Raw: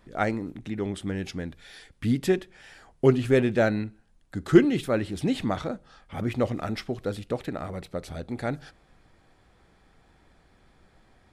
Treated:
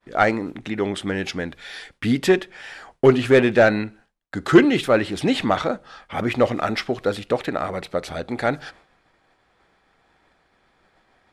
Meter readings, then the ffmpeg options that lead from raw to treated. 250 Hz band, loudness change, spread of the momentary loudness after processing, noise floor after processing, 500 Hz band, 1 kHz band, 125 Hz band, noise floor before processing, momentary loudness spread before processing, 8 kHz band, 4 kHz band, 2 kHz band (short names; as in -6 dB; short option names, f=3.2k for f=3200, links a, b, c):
+4.5 dB, +6.0 dB, 17 LU, -64 dBFS, +7.0 dB, +10.0 dB, +1.5 dB, -62 dBFS, 16 LU, +6.0 dB, +10.0 dB, +10.5 dB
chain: -filter_complex "[0:a]asplit=2[a][b];[b]highpass=f=720:p=1,volume=15dB,asoftclip=type=tanh:threshold=-4.5dB[c];[a][c]amix=inputs=2:normalize=0,lowpass=f=3.3k:p=1,volume=-6dB,agate=range=-33dB:threshold=-48dB:ratio=3:detection=peak,volume=3.5dB"